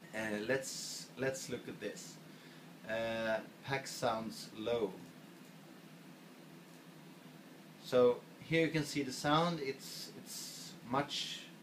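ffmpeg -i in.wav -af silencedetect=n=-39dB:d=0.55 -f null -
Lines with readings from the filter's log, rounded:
silence_start: 2.02
silence_end: 2.89 | silence_duration: 0.87
silence_start: 4.91
silence_end: 7.88 | silence_duration: 2.98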